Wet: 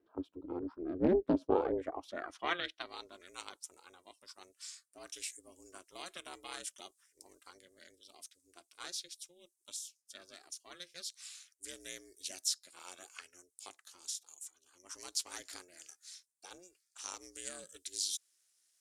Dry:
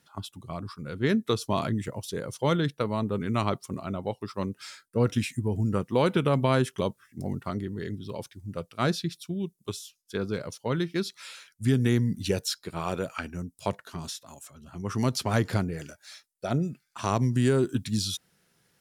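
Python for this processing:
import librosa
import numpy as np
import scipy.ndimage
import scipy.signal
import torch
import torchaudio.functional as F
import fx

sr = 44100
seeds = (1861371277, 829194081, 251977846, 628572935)

y = x * np.sin(2.0 * np.pi * 180.0 * np.arange(len(x)) / sr)
y = fx.filter_sweep_bandpass(y, sr, from_hz=300.0, to_hz=7700.0, start_s=1.34, end_s=3.29, q=1.7)
y = fx.doppler_dist(y, sr, depth_ms=0.24)
y = y * 10.0 ** (4.5 / 20.0)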